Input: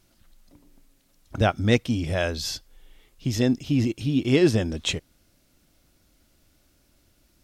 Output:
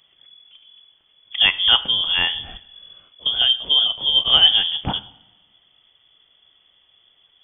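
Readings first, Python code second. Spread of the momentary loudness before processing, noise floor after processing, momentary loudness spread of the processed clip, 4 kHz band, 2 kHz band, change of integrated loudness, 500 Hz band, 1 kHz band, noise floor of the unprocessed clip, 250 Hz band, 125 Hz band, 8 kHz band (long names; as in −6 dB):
12 LU, −61 dBFS, 14 LU, +20.0 dB, +6.5 dB, +8.5 dB, −13.0 dB, +3.0 dB, −64 dBFS, −16.5 dB, −13.5 dB, below −40 dB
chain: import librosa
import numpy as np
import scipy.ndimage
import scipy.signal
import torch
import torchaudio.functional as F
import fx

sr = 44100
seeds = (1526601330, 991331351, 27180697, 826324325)

y = fx.rev_double_slope(x, sr, seeds[0], early_s=0.66, late_s=1.9, knee_db=-18, drr_db=13.0)
y = fx.freq_invert(y, sr, carrier_hz=3400)
y = F.gain(torch.from_numpy(y), 4.0).numpy()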